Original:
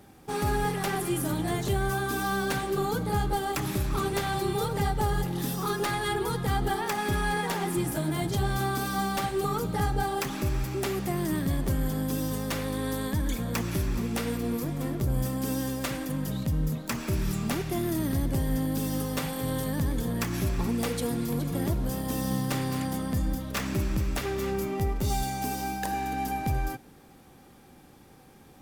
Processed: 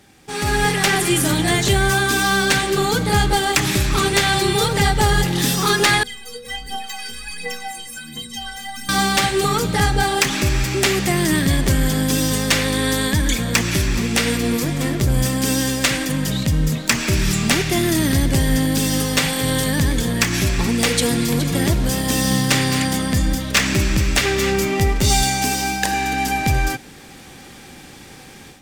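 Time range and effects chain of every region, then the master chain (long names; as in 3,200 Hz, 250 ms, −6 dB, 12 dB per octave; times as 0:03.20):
0:06.03–0:08.89: parametric band 760 Hz −7 dB 1.3 octaves + phase shifter 1.4 Hz, delay 2.3 ms, feedback 77% + stiff-string resonator 230 Hz, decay 0.64 s, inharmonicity 0.03
whole clip: flat-topped bell 3,800 Hz +9 dB 2.7 octaves; automatic gain control gain up to 11.5 dB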